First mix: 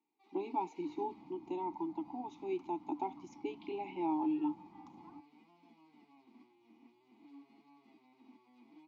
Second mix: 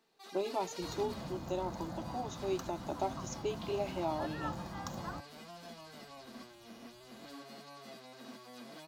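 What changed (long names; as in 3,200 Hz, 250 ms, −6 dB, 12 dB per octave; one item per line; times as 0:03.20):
speech −11.0 dB
master: remove formant filter u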